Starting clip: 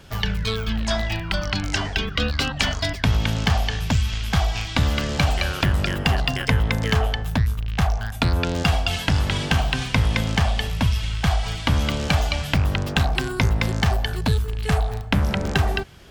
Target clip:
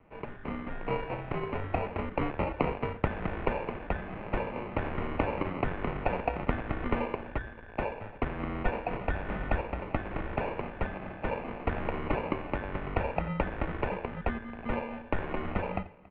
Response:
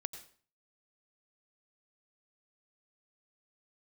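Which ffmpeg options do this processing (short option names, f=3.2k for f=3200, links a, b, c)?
-filter_complex "[0:a]asettb=1/sr,asplit=3[a][b][c];[a]atrim=end=8.654[d];[b]atrim=start=8.65:end=9.6,asetpts=PTS-STARTPTS,afade=t=in:d=0.004:c=qsin,afade=t=out:st=0.946:d=0.004:c=qsin,equalizer=f=160:t=o:w=1.1:g=9.5[e];[c]atrim=start=9.596[f];[d][e]acrossfade=d=0.004:c1=hsin:c2=qsin[g];[g][f]acrossfade=d=0.004:c1=qsin:c2=hsin,dynaudnorm=f=140:g=9:m=11.5dB,acrusher=samples=24:mix=1:aa=0.000001,aecho=1:1:279:0.0708[h];[1:a]atrim=start_sample=2205,atrim=end_sample=3969[i];[h][i]afir=irnorm=-1:irlink=0,highpass=f=200:t=q:w=0.5412,highpass=f=200:t=q:w=1.307,lowpass=f=2.7k:t=q:w=0.5176,lowpass=f=2.7k:t=q:w=0.7071,lowpass=f=2.7k:t=q:w=1.932,afreqshift=-200,volume=-8.5dB"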